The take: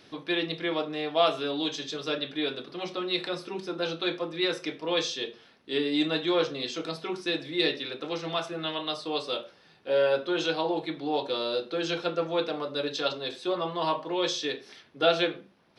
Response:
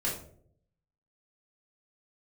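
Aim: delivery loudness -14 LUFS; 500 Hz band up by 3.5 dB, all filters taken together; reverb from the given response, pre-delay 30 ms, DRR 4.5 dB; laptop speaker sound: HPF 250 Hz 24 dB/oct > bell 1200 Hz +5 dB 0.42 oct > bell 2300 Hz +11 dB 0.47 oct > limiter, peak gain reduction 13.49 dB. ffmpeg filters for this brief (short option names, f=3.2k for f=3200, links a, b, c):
-filter_complex "[0:a]equalizer=f=500:t=o:g=4,asplit=2[a][b];[1:a]atrim=start_sample=2205,adelay=30[c];[b][c]afir=irnorm=-1:irlink=0,volume=-10.5dB[d];[a][d]amix=inputs=2:normalize=0,highpass=f=250:w=0.5412,highpass=f=250:w=1.3066,equalizer=f=1.2k:t=o:w=0.42:g=5,equalizer=f=2.3k:t=o:w=0.47:g=11,volume=14dB,alimiter=limit=-4.5dB:level=0:latency=1"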